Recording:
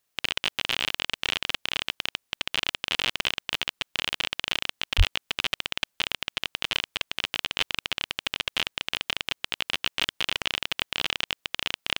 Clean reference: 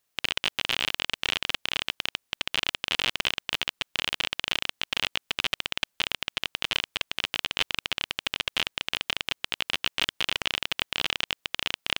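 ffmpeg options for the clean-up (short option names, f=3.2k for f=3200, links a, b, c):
-filter_complex "[0:a]asplit=3[a][b][c];[a]afade=t=out:st=4.97:d=0.02[d];[b]highpass=f=140:w=0.5412,highpass=f=140:w=1.3066,afade=t=in:st=4.97:d=0.02,afade=t=out:st=5.09:d=0.02[e];[c]afade=t=in:st=5.09:d=0.02[f];[d][e][f]amix=inputs=3:normalize=0"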